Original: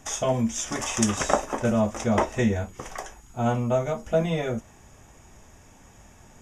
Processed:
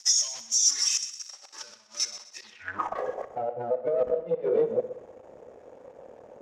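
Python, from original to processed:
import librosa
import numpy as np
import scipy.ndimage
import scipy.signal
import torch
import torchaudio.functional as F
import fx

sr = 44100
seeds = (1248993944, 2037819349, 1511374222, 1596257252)

p1 = fx.reverse_delay(x, sr, ms=155, wet_db=-5.5)
p2 = fx.noise_reduce_blind(p1, sr, reduce_db=14)
p3 = fx.level_steps(p2, sr, step_db=11)
p4 = p2 + (p3 * 10.0 ** (1.0 / 20.0))
p5 = fx.gate_flip(p4, sr, shuts_db=-13.0, range_db=-36)
p6 = fx.over_compress(p5, sr, threshold_db=-34.0, ratio=-1.0)
p7 = fx.leveller(p6, sr, passes=5)
p8 = fx.filter_sweep_bandpass(p7, sr, from_hz=5500.0, to_hz=510.0, start_s=2.39, end_s=3.0, q=7.3)
p9 = p8 + fx.echo_heads(p8, sr, ms=63, heads='first and second', feedback_pct=41, wet_db=-15.5, dry=0)
y = p9 * 10.0 ** (5.0 / 20.0)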